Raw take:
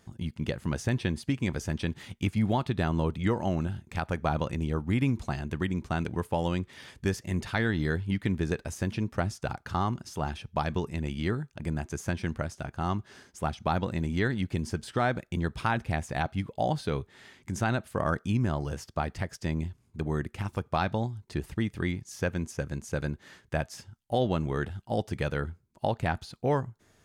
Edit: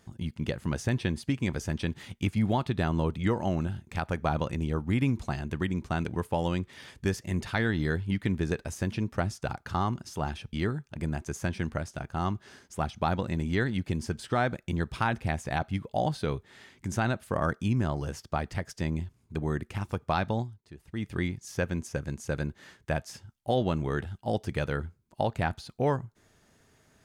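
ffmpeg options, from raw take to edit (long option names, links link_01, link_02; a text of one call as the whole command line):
ffmpeg -i in.wav -filter_complex "[0:a]asplit=4[link_01][link_02][link_03][link_04];[link_01]atrim=end=10.532[link_05];[link_02]atrim=start=11.168:end=21.31,asetpts=PTS-STARTPTS,afade=type=out:start_time=9.892:duration=0.25:curve=qua:silence=0.16788[link_06];[link_03]atrim=start=21.31:end=21.45,asetpts=PTS-STARTPTS,volume=-15.5dB[link_07];[link_04]atrim=start=21.45,asetpts=PTS-STARTPTS,afade=type=in:duration=0.25:curve=qua:silence=0.16788[link_08];[link_06][link_07][link_08]concat=n=3:v=0:a=1[link_09];[link_05][link_09]acrossfade=duration=0.004:curve1=hsin:curve2=hsin" out.wav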